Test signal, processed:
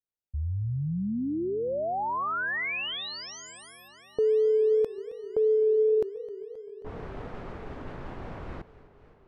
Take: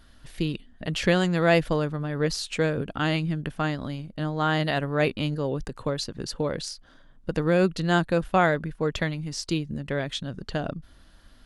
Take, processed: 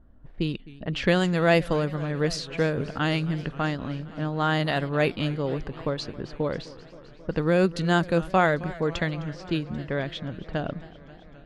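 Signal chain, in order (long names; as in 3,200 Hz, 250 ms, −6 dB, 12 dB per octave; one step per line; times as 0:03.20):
low-pass that shuts in the quiet parts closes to 620 Hz, open at −20.5 dBFS
feedback echo with a swinging delay time 264 ms, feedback 76%, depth 163 cents, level −19 dB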